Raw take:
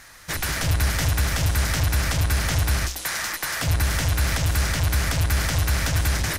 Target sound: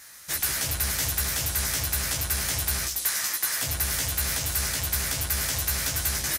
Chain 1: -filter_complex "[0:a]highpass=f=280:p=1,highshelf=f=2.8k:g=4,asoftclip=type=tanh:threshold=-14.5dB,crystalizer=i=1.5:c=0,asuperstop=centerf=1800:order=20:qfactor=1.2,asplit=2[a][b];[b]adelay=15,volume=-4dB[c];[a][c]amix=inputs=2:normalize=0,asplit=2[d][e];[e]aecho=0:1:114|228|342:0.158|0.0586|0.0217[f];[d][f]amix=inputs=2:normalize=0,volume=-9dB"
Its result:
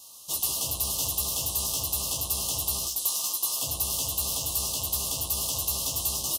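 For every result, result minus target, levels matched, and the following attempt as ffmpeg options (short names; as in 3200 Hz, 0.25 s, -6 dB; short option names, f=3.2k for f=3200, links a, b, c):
2000 Hz band -15.5 dB; soft clip: distortion +13 dB; 125 Hz band -6.0 dB
-filter_complex "[0:a]highpass=f=280:p=1,highshelf=f=2.8k:g=4,asoftclip=type=tanh:threshold=-14.5dB,crystalizer=i=1.5:c=0,asplit=2[a][b];[b]adelay=15,volume=-4dB[c];[a][c]amix=inputs=2:normalize=0,asplit=2[d][e];[e]aecho=0:1:114|228|342:0.158|0.0586|0.0217[f];[d][f]amix=inputs=2:normalize=0,volume=-9dB"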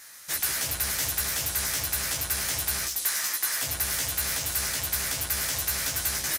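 soft clip: distortion +13 dB; 125 Hz band -6.0 dB
-filter_complex "[0:a]highpass=f=280:p=1,highshelf=f=2.8k:g=4,asoftclip=type=tanh:threshold=-6.5dB,crystalizer=i=1.5:c=0,asplit=2[a][b];[b]adelay=15,volume=-4dB[c];[a][c]amix=inputs=2:normalize=0,asplit=2[d][e];[e]aecho=0:1:114|228|342:0.158|0.0586|0.0217[f];[d][f]amix=inputs=2:normalize=0,volume=-9dB"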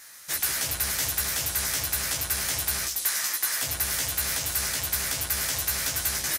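125 Hz band -6.5 dB
-filter_complex "[0:a]highpass=f=100:p=1,highshelf=f=2.8k:g=4,asoftclip=type=tanh:threshold=-6.5dB,crystalizer=i=1.5:c=0,asplit=2[a][b];[b]adelay=15,volume=-4dB[c];[a][c]amix=inputs=2:normalize=0,asplit=2[d][e];[e]aecho=0:1:114|228|342:0.158|0.0586|0.0217[f];[d][f]amix=inputs=2:normalize=0,volume=-9dB"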